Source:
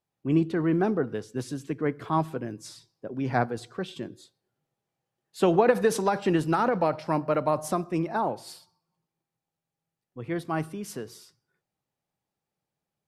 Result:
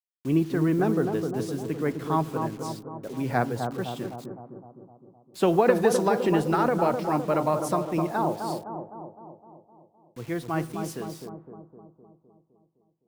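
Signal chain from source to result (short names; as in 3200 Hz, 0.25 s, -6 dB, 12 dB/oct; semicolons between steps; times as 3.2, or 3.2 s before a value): requantised 8-bit, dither none; analogue delay 0.256 s, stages 2048, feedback 58%, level -5.5 dB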